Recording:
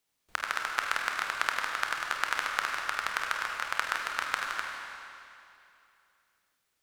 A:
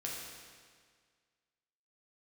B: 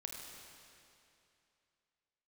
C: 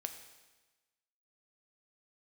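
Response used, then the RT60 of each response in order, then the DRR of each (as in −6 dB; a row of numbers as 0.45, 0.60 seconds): B; 1.8, 2.7, 1.2 seconds; −4.0, 0.0, 6.0 decibels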